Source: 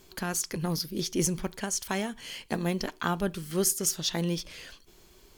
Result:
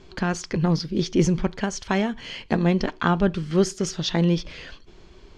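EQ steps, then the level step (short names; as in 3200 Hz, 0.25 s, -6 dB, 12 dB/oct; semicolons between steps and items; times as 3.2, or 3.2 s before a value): LPF 8800 Hz 12 dB/oct; air absorption 150 m; low shelf 230 Hz +4 dB; +7.5 dB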